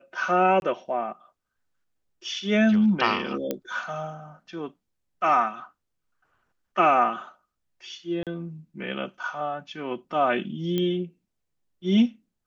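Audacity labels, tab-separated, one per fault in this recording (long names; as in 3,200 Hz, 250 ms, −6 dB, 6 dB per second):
0.600000	0.620000	drop-out 21 ms
3.510000	3.510000	click −13 dBFS
8.230000	8.270000	drop-out 37 ms
10.780000	10.780000	click −15 dBFS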